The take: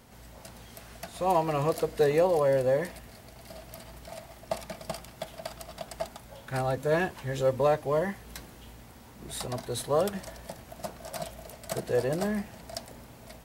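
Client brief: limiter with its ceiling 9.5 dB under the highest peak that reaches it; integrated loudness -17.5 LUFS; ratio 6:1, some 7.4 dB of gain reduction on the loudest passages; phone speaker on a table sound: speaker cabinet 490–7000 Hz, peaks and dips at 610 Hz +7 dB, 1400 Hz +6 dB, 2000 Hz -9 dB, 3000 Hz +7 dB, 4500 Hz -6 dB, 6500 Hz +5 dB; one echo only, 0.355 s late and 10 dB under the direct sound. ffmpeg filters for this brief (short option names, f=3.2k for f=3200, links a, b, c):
-af "acompressor=threshold=-27dB:ratio=6,alimiter=level_in=3dB:limit=-24dB:level=0:latency=1,volume=-3dB,highpass=f=490:w=0.5412,highpass=f=490:w=1.3066,equalizer=f=610:t=q:w=4:g=7,equalizer=f=1.4k:t=q:w=4:g=6,equalizer=f=2k:t=q:w=4:g=-9,equalizer=f=3k:t=q:w=4:g=7,equalizer=f=4.5k:t=q:w=4:g=-6,equalizer=f=6.5k:t=q:w=4:g=5,lowpass=f=7k:w=0.5412,lowpass=f=7k:w=1.3066,aecho=1:1:355:0.316,volume=20.5dB"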